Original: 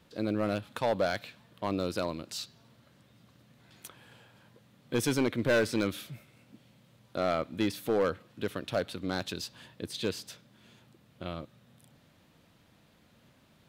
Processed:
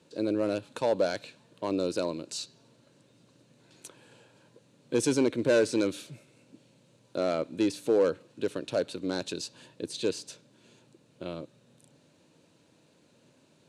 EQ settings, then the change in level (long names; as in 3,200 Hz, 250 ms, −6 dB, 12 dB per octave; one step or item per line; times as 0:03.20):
loudspeaker in its box 200–9,100 Hz, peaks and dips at 210 Hz −8 dB, 740 Hz −9 dB, 1,200 Hz −8 dB, 2,000 Hz −7 dB, 3,300 Hz −8 dB, 5,100 Hz −5 dB
parametric band 1,700 Hz −5.5 dB 1.3 octaves
+6.0 dB